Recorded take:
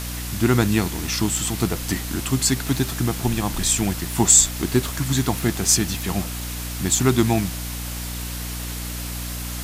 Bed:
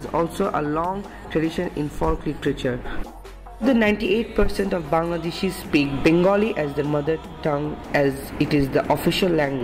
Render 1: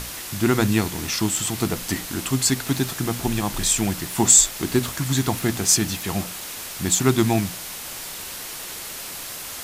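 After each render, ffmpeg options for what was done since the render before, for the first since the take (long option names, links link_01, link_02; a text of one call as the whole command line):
ffmpeg -i in.wav -af "bandreject=frequency=60:width_type=h:width=6,bandreject=frequency=120:width_type=h:width=6,bandreject=frequency=180:width_type=h:width=6,bandreject=frequency=240:width_type=h:width=6,bandreject=frequency=300:width_type=h:width=6" out.wav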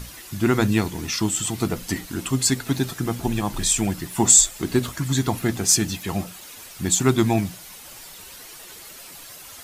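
ffmpeg -i in.wav -af "afftdn=noise_reduction=10:noise_floor=-34" out.wav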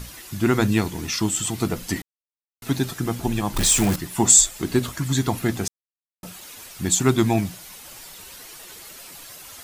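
ffmpeg -i in.wav -filter_complex "[0:a]asettb=1/sr,asplit=3[link_01][link_02][link_03];[link_01]atrim=end=3.564[link_04];[link_02]atrim=start=3.56:end=3.96,asetpts=PTS-STARTPTS,afade=type=in:duration=0.004:curve=qsin,afade=type=out:start_time=0.396:duration=0.004:curve=qsin,aeval=exprs='val(0)+0.5*0.0891*sgn(val(0))':channel_layout=same[link_05];[link_03]atrim=start=3.956[link_06];[link_04][link_05]acrossfade=duration=0.004:curve1=hsin:curve2=qsin[link_07];[link_07][link_06]acrossfade=duration=0.004:curve1=qsin:curve2=hsin,asplit=5[link_08][link_09][link_10][link_11][link_12];[link_08]atrim=end=2.02,asetpts=PTS-STARTPTS,afade=type=out:start_time=2.016:duration=0.004:curve=hsin[link_13];[link_09]atrim=start=2.02:end=2.62,asetpts=PTS-STARTPTS,volume=0[link_14];[link_10]atrim=start=2.62:end=5.68,asetpts=PTS-STARTPTS,afade=type=in:duration=0.004:curve=hsin,afade=type=out:start_time=3.056:duration=0.004:curve=hsin[link_15];[link_11]atrim=start=5.68:end=6.23,asetpts=PTS-STARTPTS,volume=0[link_16];[link_12]atrim=start=6.23,asetpts=PTS-STARTPTS,afade=type=in:duration=0.004:curve=hsin[link_17];[link_13][link_14][link_15][link_16][link_17]concat=n=5:v=0:a=1" out.wav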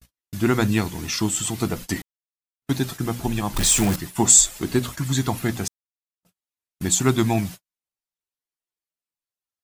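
ffmpeg -i in.wav -af "adynamicequalizer=threshold=0.0251:dfrequency=380:dqfactor=1.2:tfrequency=380:tqfactor=1.2:attack=5:release=100:ratio=0.375:range=2:mode=cutabove:tftype=bell,agate=range=-55dB:threshold=-33dB:ratio=16:detection=peak" out.wav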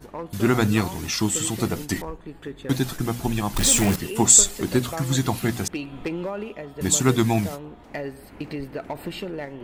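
ffmpeg -i in.wav -i bed.wav -filter_complex "[1:a]volume=-12.5dB[link_01];[0:a][link_01]amix=inputs=2:normalize=0" out.wav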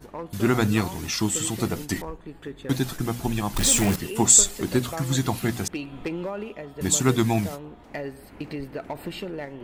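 ffmpeg -i in.wav -af "volume=-1.5dB" out.wav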